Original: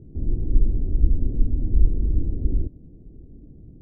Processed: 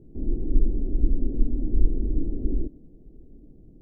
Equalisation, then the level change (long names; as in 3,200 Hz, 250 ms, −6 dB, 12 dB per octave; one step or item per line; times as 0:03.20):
dynamic equaliser 290 Hz, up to +6 dB, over −44 dBFS, Q 1.1
parametric band 94 Hz −11 dB 1.9 octaves
0.0 dB